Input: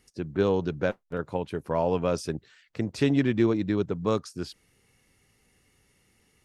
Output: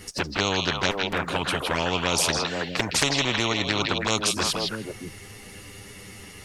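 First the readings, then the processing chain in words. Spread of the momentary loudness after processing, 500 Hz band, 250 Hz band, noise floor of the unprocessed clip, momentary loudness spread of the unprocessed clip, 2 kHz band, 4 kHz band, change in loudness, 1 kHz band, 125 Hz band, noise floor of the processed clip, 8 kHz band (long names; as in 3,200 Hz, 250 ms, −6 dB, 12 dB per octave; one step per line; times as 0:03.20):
20 LU, −2.0 dB, −3.0 dB, −67 dBFS, 13 LU, +12.5 dB, +19.0 dB, +3.5 dB, +7.5 dB, −0.5 dB, −44 dBFS, +20.0 dB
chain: flanger swept by the level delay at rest 10.3 ms, full sweep at −21 dBFS
echo through a band-pass that steps 161 ms, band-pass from 3,500 Hz, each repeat −1.4 octaves, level −2.5 dB
every bin compressed towards the loudest bin 4 to 1
level +7 dB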